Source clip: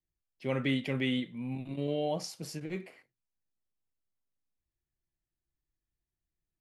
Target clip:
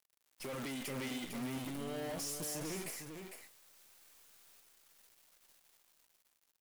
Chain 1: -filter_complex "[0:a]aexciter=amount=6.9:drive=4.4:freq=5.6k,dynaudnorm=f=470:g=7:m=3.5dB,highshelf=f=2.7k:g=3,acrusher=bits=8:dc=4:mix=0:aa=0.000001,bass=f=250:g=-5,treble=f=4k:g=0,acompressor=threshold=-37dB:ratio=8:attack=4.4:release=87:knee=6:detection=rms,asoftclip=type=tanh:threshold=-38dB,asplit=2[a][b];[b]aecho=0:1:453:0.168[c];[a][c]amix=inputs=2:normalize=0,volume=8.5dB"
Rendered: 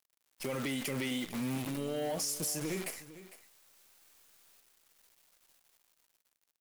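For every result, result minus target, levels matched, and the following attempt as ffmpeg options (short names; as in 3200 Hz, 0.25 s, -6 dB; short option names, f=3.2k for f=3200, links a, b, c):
echo-to-direct -9 dB; soft clip: distortion -8 dB
-filter_complex "[0:a]aexciter=amount=6.9:drive=4.4:freq=5.6k,dynaudnorm=f=470:g=7:m=3.5dB,highshelf=f=2.7k:g=3,acrusher=bits=8:dc=4:mix=0:aa=0.000001,bass=f=250:g=-5,treble=f=4k:g=0,acompressor=threshold=-37dB:ratio=8:attack=4.4:release=87:knee=6:detection=rms,asoftclip=type=tanh:threshold=-38dB,asplit=2[a][b];[b]aecho=0:1:453:0.473[c];[a][c]amix=inputs=2:normalize=0,volume=8.5dB"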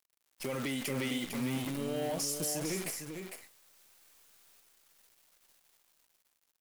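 soft clip: distortion -8 dB
-filter_complex "[0:a]aexciter=amount=6.9:drive=4.4:freq=5.6k,dynaudnorm=f=470:g=7:m=3.5dB,highshelf=f=2.7k:g=3,acrusher=bits=8:dc=4:mix=0:aa=0.000001,bass=f=250:g=-5,treble=f=4k:g=0,acompressor=threshold=-37dB:ratio=8:attack=4.4:release=87:knee=6:detection=rms,asoftclip=type=tanh:threshold=-48dB,asplit=2[a][b];[b]aecho=0:1:453:0.473[c];[a][c]amix=inputs=2:normalize=0,volume=8.5dB"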